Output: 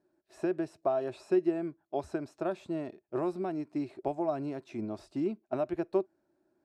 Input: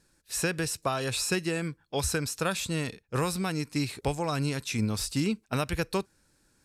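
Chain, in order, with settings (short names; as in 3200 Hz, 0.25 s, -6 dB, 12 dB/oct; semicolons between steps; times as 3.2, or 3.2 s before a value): double band-pass 480 Hz, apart 0.79 oct; gain +7 dB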